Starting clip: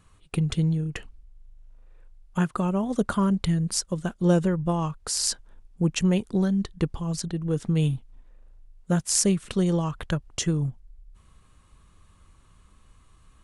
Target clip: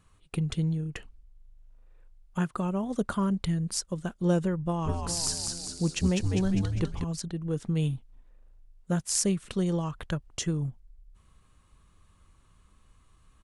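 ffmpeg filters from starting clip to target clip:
-filter_complex "[0:a]asplit=3[a][b][c];[a]afade=t=out:st=4.84:d=0.02[d];[b]asplit=9[e][f][g][h][i][j][k][l][m];[f]adelay=201,afreqshift=-86,volume=-3.5dB[n];[g]adelay=402,afreqshift=-172,volume=-8.4dB[o];[h]adelay=603,afreqshift=-258,volume=-13.3dB[p];[i]adelay=804,afreqshift=-344,volume=-18.1dB[q];[j]adelay=1005,afreqshift=-430,volume=-23dB[r];[k]adelay=1206,afreqshift=-516,volume=-27.9dB[s];[l]adelay=1407,afreqshift=-602,volume=-32.8dB[t];[m]adelay=1608,afreqshift=-688,volume=-37.7dB[u];[e][n][o][p][q][r][s][t][u]amix=inputs=9:normalize=0,afade=t=in:st=4.84:d=0.02,afade=t=out:st=7.03:d=0.02[v];[c]afade=t=in:st=7.03:d=0.02[w];[d][v][w]amix=inputs=3:normalize=0,volume=-4.5dB"

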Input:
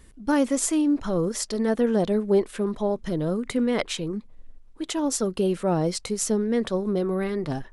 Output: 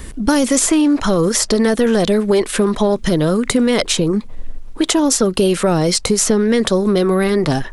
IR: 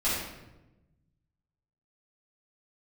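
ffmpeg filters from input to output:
-filter_complex "[0:a]apsyclip=18dB,acrossover=split=590|1400|3900[a][b][c][d];[a]acompressor=threshold=-18dB:ratio=4[e];[b]acompressor=threshold=-28dB:ratio=4[f];[c]acompressor=threshold=-31dB:ratio=4[g];[d]acompressor=threshold=-20dB:ratio=4[h];[e][f][g][h]amix=inputs=4:normalize=0,volume=2.5dB"

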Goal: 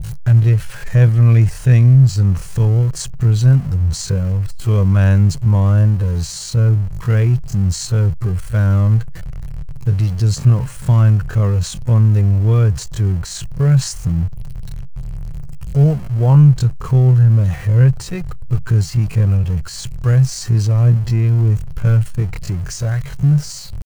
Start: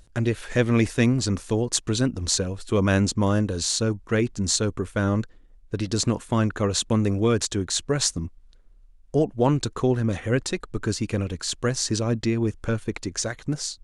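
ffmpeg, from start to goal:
-af "aeval=exprs='val(0)+0.5*0.0398*sgn(val(0))':c=same,lowshelf=f=190:t=q:w=3:g=10,bandreject=f=3.6k:w=9.5,atempo=0.58,adynamicequalizer=threshold=0.01:dfrequency=1900:dqfactor=0.7:tfrequency=1900:tqfactor=0.7:attack=5:release=100:ratio=0.375:range=2:mode=cutabove:tftype=highshelf,volume=-1.5dB"

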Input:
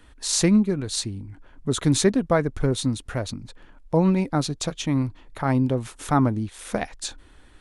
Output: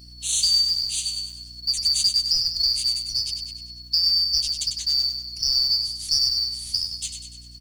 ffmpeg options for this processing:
-filter_complex "[0:a]afftfilt=real='real(if(lt(b,272),68*(eq(floor(b/68),0)*1+eq(floor(b/68),1)*2+eq(floor(b/68),2)*3+eq(floor(b/68),3)*0)+mod(b,68),b),0)':imag='imag(if(lt(b,272),68*(eq(floor(b/68),0)*1+eq(floor(b/68),1)*2+eq(floor(b/68),2)*3+eq(floor(b/68),3)*0)+mod(b,68),b),0)':win_size=2048:overlap=0.75,firequalizer=gain_entry='entry(110,0);entry(170,-14);entry(330,-25);entry(1300,-28);entry(3300,0);entry(6700,0)':delay=0.05:min_phase=1,acrossover=split=81|980|3500[a][b][c][d];[b]acompressor=threshold=-59dB:ratio=4[e];[c]acompressor=threshold=-47dB:ratio=4[f];[d]acompressor=threshold=-21dB:ratio=4[g];[a][e][f][g]amix=inputs=4:normalize=0,aeval=exprs='val(0)+0.00355*(sin(2*PI*60*n/s)+sin(2*PI*2*60*n/s)/2+sin(2*PI*3*60*n/s)/3+sin(2*PI*4*60*n/s)/4+sin(2*PI*5*60*n/s)/5)':c=same,acrusher=bits=6:mode=log:mix=0:aa=0.000001,aecho=1:1:98|196|294|392|490|588:0.447|0.232|0.121|0.0628|0.0327|0.017,volume=2.5dB"

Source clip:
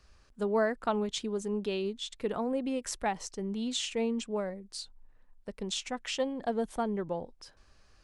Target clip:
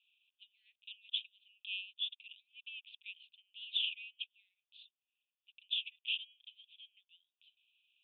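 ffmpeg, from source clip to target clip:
-af "asuperpass=centerf=3000:order=12:qfactor=2.6,volume=3dB"

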